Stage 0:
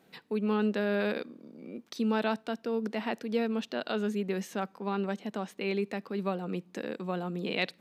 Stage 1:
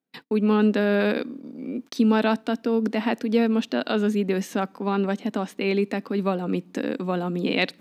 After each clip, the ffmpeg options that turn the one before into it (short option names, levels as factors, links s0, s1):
-af "agate=range=0.0224:threshold=0.00316:ratio=16:detection=peak,equalizer=f=270:t=o:w=0.34:g=10,volume=2.24"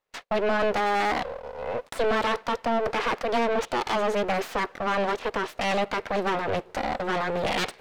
-filter_complex "[0:a]aeval=exprs='abs(val(0))':c=same,asplit=2[s0][s1];[s1]highpass=f=720:p=1,volume=17.8,asoftclip=type=tanh:threshold=0.398[s2];[s0][s2]amix=inputs=2:normalize=0,lowpass=f=2400:p=1,volume=0.501,volume=0.447"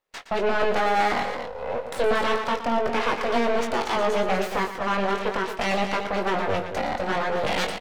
-filter_complex "[0:a]asplit=2[s0][s1];[s1]adelay=21,volume=0.501[s2];[s0][s2]amix=inputs=2:normalize=0,asplit=2[s3][s4];[s4]aecho=0:1:116.6|230.3:0.282|0.398[s5];[s3][s5]amix=inputs=2:normalize=0"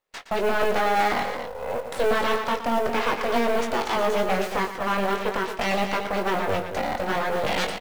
-af "acrusher=bits=6:mode=log:mix=0:aa=0.000001"